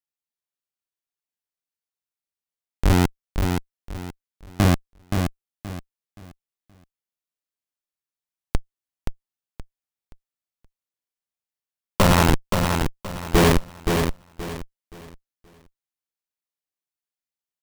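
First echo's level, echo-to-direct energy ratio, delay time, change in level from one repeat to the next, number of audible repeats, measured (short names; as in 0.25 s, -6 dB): -5.5 dB, -5.0 dB, 0.524 s, -11.0 dB, 3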